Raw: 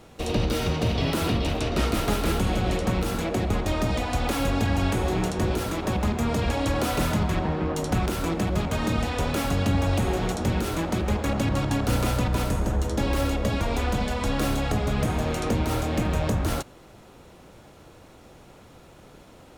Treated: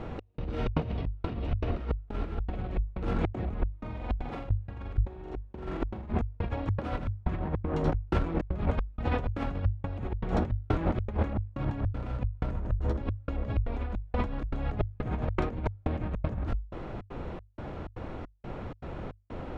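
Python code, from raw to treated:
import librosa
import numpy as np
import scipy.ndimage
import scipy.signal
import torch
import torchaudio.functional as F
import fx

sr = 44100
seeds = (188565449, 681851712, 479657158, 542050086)

y = scipy.signal.sosfilt(scipy.signal.butter(2, 2100.0, 'lowpass', fs=sr, output='sos'), x)
y = fx.room_flutter(y, sr, wall_m=7.8, rt60_s=1.0, at=(3.66, 6.11))
y = fx.step_gate(y, sr, bpm=157, pattern='xx..xxx.x', floor_db=-60.0, edge_ms=4.5)
y = fx.peak_eq(y, sr, hz=140.0, db=-3.0, octaves=1.7)
y = fx.hum_notches(y, sr, base_hz=50, count=2)
y = fx.over_compress(y, sr, threshold_db=-33.0, ratio=-0.5)
y = fx.low_shelf(y, sr, hz=200.0, db=9.0)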